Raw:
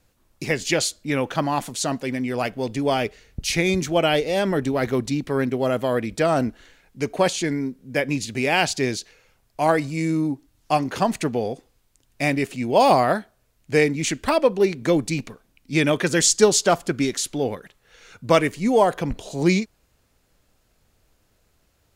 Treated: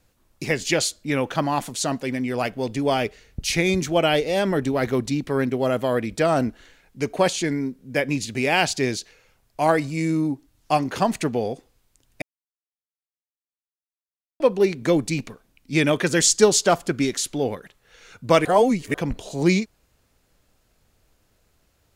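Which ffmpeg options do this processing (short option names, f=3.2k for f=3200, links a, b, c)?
-filter_complex "[0:a]asplit=5[a][b][c][d][e];[a]atrim=end=12.22,asetpts=PTS-STARTPTS,afade=t=out:st=12.216:d=0.004:c=hsin[f];[b]atrim=start=12.22:end=14.4,asetpts=PTS-STARTPTS,volume=0[g];[c]atrim=start=14.4:end=18.452,asetpts=PTS-STARTPTS,afade=t=in:d=0.004:c=hsin[h];[d]atrim=start=18.448:end=18.942,asetpts=PTS-STARTPTS,areverse[i];[e]atrim=start=18.938[j];[f][g][h]concat=n=3:v=0:a=1[k];[k][i]acrossfade=d=0.004:c1=hsin:c2=hsin[l];[l][j]acrossfade=d=0.004:c1=hsin:c2=hsin"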